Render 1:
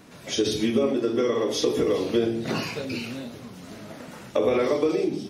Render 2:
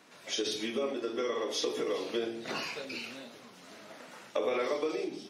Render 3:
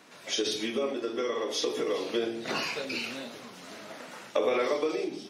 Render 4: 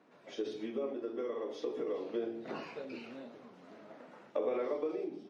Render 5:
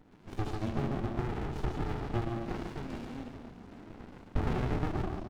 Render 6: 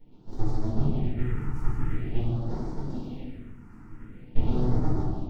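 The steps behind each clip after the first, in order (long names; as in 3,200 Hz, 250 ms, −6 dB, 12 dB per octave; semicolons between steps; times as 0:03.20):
meter weighting curve A; level −5.5 dB
speech leveller 2 s; level +2.5 dB
resonant band-pass 340 Hz, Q 0.5; level −6 dB
repeating echo 142 ms, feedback 42%, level −6 dB; windowed peak hold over 65 samples; level +7.5 dB
convolution reverb RT60 0.40 s, pre-delay 6 ms, DRR −4.5 dB; all-pass phaser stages 4, 0.46 Hz, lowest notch 570–2,700 Hz; level −6.5 dB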